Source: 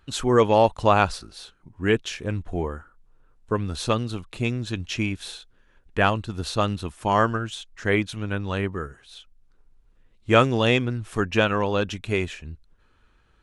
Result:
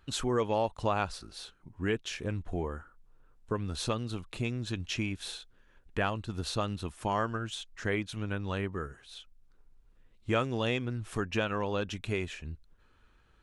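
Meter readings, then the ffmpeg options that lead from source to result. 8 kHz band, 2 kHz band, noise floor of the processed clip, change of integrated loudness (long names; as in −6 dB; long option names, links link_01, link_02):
−5.0 dB, −10.0 dB, −64 dBFS, −9.5 dB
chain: -af "acompressor=threshold=-29dB:ratio=2,volume=-3dB"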